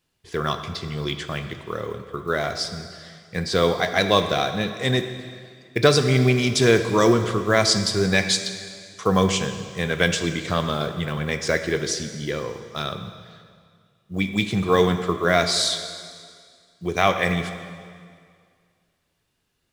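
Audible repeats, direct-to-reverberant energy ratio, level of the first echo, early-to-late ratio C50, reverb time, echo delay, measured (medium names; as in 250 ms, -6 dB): no echo, 7.5 dB, no echo, 9.0 dB, 2.1 s, no echo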